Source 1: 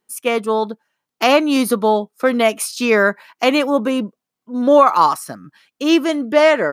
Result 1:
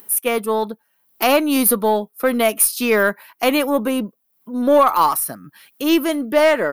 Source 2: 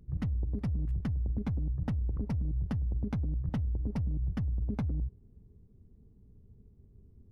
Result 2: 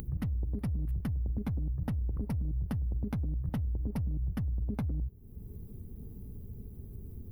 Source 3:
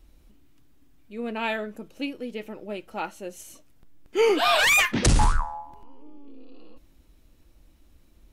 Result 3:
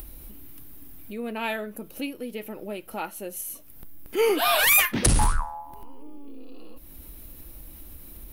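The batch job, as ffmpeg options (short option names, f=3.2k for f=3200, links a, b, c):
-af "aexciter=amount=8.8:drive=3.7:freq=9.8k,aeval=exprs='1.19*(cos(1*acos(clip(val(0)/1.19,-1,1)))-cos(1*PI/2))+0.106*(cos(2*acos(clip(val(0)/1.19,-1,1)))-cos(2*PI/2))+0.0237*(cos(4*acos(clip(val(0)/1.19,-1,1)))-cos(4*PI/2))+0.0668*(cos(5*acos(clip(val(0)/1.19,-1,1)))-cos(5*PI/2))+0.015*(cos(8*acos(clip(val(0)/1.19,-1,1)))-cos(8*PI/2))':c=same,acompressor=mode=upward:threshold=-26dB:ratio=2.5,volume=-3.5dB"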